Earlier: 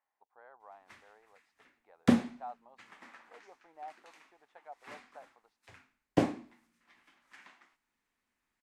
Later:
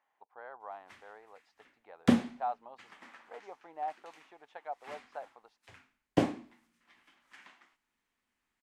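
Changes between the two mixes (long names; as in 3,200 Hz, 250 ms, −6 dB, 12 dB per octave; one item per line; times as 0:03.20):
speech +9.0 dB
master: add parametric band 3,100 Hz +3.5 dB 0.31 octaves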